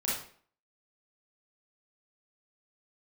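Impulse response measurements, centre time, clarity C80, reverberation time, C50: 52 ms, 7.0 dB, 0.50 s, 0.5 dB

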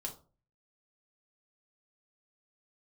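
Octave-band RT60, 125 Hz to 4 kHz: 0.65, 0.45, 0.40, 0.35, 0.25, 0.25 seconds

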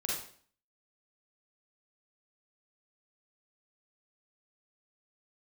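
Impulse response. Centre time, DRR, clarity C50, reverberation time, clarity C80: 53 ms, −4.5 dB, 0.0 dB, 0.50 s, 6.5 dB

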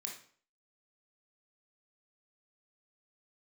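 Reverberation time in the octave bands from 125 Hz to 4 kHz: 0.50, 0.50, 0.50, 0.50, 0.45, 0.40 seconds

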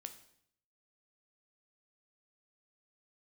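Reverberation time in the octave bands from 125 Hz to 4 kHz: 0.85, 0.75, 0.70, 0.65, 0.65, 0.65 seconds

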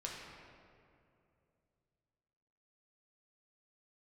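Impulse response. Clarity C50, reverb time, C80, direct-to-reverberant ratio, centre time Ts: 0.5 dB, 2.6 s, 2.0 dB, −3.5 dB, 104 ms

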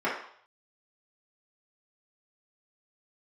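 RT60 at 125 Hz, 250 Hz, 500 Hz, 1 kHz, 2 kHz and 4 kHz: 0.50, 0.45, 0.55, 0.65, 0.55, 0.65 seconds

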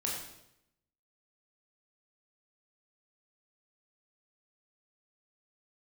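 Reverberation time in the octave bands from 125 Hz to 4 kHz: 0.95, 0.90, 0.85, 0.75, 0.75, 0.75 seconds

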